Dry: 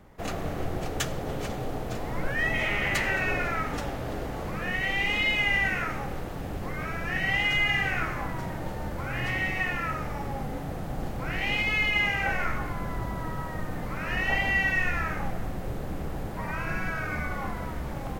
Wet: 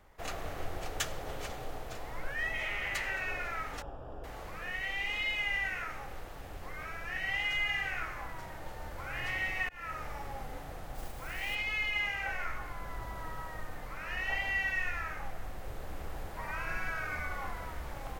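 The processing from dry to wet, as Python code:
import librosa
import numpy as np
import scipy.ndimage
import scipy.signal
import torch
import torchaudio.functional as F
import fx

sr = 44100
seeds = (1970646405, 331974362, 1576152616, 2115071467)

y = fx.moving_average(x, sr, points=21, at=(3.82, 4.24))
y = fx.mod_noise(y, sr, seeds[0], snr_db=18, at=(10.94, 11.54), fade=0.02)
y = fx.edit(y, sr, fx.fade_in_span(start_s=9.69, length_s=0.41, curve='qsin'), tone=tone)
y = fx.peak_eq(y, sr, hz=190.0, db=-13.0, octaves=2.3)
y = fx.rider(y, sr, range_db=4, speed_s=2.0)
y = y * 10.0 ** (-7.0 / 20.0)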